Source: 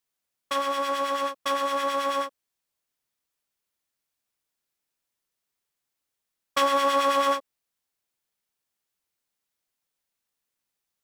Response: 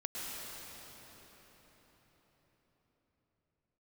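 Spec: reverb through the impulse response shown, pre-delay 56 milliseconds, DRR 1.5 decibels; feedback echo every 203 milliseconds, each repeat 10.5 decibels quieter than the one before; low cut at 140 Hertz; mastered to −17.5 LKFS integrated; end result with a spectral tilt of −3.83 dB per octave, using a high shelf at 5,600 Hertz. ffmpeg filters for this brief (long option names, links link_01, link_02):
-filter_complex "[0:a]highpass=140,highshelf=frequency=5600:gain=6,aecho=1:1:203|406|609:0.299|0.0896|0.0269,asplit=2[link_01][link_02];[1:a]atrim=start_sample=2205,adelay=56[link_03];[link_02][link_03]afir=irnorm=-1:irlink=0,volume=-4dB[link_04];[link_01][link_04]amix=inputs=2:normalize=0,volume=8dB"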